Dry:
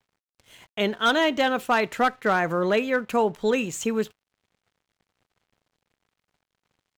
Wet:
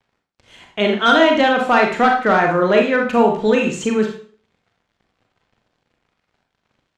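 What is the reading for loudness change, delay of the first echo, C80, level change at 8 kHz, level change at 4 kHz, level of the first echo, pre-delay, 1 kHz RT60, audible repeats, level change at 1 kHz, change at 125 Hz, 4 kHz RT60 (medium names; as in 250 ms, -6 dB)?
+8.0 dB, no echo, 10.0 dB, +1.5 dB, +6.0 dB, no echo, 31 ms, 0.45 s, no echo, +8.5 dB, +7.5 dB, 0.40 s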